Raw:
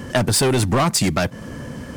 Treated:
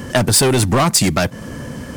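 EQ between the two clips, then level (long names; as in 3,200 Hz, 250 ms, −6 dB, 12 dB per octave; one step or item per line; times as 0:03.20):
high-shelf EQ 6,200 Hz +4.5 dB
+3.0 dB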